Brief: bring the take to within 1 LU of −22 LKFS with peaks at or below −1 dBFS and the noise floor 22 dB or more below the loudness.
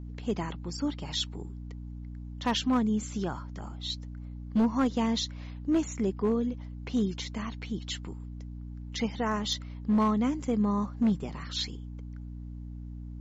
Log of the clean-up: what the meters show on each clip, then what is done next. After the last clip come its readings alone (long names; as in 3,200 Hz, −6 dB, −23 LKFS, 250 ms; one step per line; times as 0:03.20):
share of clipped samples 0.8%; peaks flattened at −20.0 dBFS; mains hum 60 Hz; hum harmonics up to 300 Hz; level of the hum −38 dBFS; integrated loudness −30.5 LKFS; sample peak −20.0 dBFS; target loudness −22.0 LKFS
→ clipped peaks rebuilt −20 dBFS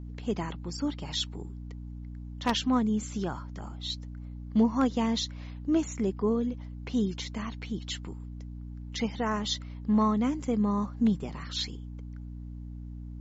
share of clipped samples 0.0%; mains hum 60 Hz; hum harmonics up to 300 Hz; level of the hum −38 dBFS
→ mains-hum notches 60/120/180/240/300 Hz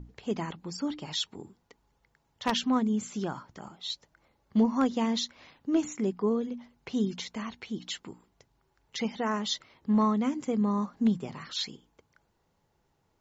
mains hum none found; integrated loudness −31.0 LKFS; sample peak −10.5 dBFS; target loudness −22.0 LKFS
→ level +9 dB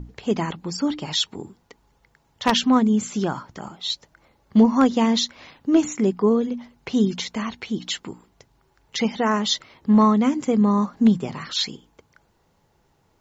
integrated loudness −22.0 LKFS; sample peak −1.5 dBFS; background noise floor −64 dBFS